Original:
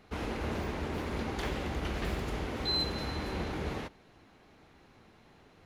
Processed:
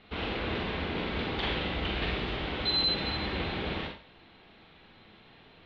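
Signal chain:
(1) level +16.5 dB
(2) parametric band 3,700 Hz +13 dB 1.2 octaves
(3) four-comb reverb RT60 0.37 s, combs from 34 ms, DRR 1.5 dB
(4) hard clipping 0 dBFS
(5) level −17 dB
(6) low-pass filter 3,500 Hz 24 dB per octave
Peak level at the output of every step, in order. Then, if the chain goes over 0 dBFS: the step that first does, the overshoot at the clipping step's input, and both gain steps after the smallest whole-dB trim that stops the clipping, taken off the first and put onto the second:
−3.5, +4.5, +6.5, 0.0, −17.0, −18.5 dBFS
step 2, 6.5 dB
step 1 +9.5 dB, step 5 −10 dB

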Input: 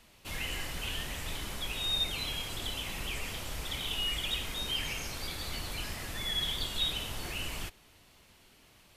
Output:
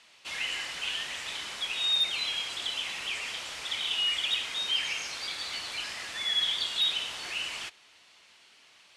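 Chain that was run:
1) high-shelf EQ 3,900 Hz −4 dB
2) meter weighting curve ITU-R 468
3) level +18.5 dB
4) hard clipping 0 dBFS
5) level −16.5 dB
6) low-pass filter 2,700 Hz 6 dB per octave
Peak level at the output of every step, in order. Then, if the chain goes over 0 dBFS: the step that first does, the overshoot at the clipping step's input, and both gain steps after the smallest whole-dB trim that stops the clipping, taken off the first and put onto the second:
−21.0, −13.0, +5.5, 0.0, −16.5, −18.5 dBFS
step 3, 5.5 dB
step 3 +12.5 dB, step 5 −10.5 dB

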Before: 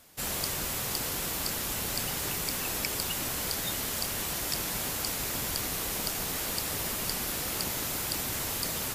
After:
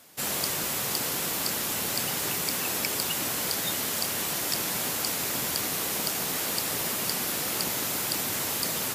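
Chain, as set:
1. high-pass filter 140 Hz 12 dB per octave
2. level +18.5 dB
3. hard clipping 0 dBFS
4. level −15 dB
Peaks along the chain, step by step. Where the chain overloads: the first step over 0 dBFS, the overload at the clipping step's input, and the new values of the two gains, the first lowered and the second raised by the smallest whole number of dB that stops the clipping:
−12.5, +6.0, 0.0, −15.0 dBFS
step 2, 6.0 dB
step 2 +12.5 dB, step 4 −9 dB

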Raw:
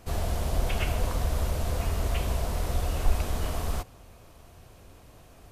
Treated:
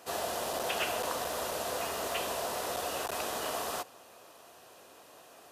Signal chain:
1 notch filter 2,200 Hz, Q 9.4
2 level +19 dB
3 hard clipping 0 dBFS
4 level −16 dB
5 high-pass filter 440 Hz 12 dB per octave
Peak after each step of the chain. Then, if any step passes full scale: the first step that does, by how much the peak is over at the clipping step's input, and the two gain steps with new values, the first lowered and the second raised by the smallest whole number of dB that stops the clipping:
−10.5, +8.5, 0.0, −16.0, −17.5 dBFS
step 2, 8.5 dB
step 2 +10 dB, step 4 −7 dB

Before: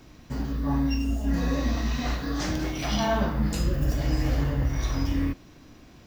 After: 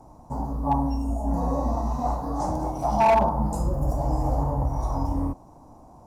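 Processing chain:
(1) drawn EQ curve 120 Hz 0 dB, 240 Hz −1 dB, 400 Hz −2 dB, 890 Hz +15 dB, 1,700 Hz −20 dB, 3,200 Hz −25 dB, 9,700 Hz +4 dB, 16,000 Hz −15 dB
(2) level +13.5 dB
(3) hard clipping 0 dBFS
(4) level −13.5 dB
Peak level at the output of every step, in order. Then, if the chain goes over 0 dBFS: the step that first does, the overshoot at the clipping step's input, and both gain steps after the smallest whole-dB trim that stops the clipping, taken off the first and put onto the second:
−6.5, +7.0, 0.0, −13.5 dBFS
step 2, 7.0 dB
step 2 +6.5 dB, step 4 −6.5 dB

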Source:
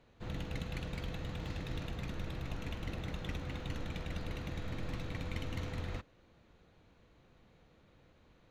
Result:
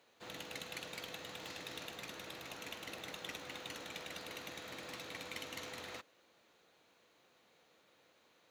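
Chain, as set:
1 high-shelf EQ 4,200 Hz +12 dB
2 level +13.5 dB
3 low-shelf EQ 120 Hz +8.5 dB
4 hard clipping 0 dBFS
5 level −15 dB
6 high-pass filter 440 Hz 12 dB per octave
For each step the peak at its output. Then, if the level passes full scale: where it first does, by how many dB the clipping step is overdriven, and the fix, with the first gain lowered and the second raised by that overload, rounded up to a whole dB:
−22.0, −8.5, −6.0, −6.0, −21.0, −27.5 dBFS
no step passes full scale

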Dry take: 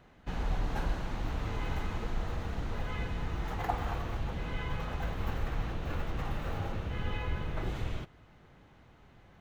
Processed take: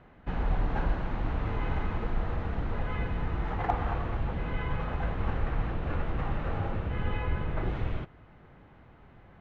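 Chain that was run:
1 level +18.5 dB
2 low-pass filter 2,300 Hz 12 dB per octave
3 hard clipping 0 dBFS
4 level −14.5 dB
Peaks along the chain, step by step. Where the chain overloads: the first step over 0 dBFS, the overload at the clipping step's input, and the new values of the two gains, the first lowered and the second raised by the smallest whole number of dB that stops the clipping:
+3.0, +3.0, 0.0, −14.5 dBFS
step 1, 3.0 dB
step 1 +15.5 dB, step 4 −11.5 dB

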